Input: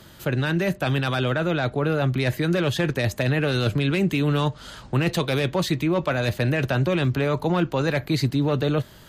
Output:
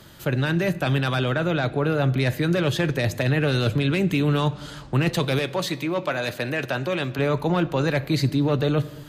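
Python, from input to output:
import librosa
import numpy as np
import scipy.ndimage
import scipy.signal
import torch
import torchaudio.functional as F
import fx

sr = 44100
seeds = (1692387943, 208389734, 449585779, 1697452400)

y = fx.highpass(x, sr, hz=390.0, slope=6, at=(5.39, 7.19))
y = fx.room_shoebox(y, sr, seeds[0], volume_m3=1600.0, walls='mixed', distance_m=0.31)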